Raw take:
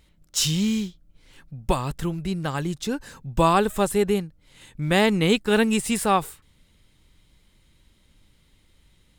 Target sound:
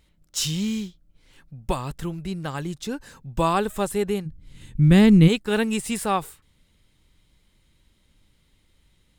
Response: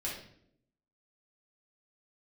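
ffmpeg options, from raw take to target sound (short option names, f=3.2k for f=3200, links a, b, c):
-filter_complex "[0:a]asplit=3[a][b][c];[a]afade=t=out:st=4.25:d=0.02[d];[b]asubboost=boost=9.5:cutoff=250,afade=t=in:st=4.25:d=0.02,afade=t=out:st=5.27:d=0.02[e];[c]afade=t=in:st=5.27:d=0.02[f];[d][e][f]amix=inputs=3:normalize=0,volume=-3dB"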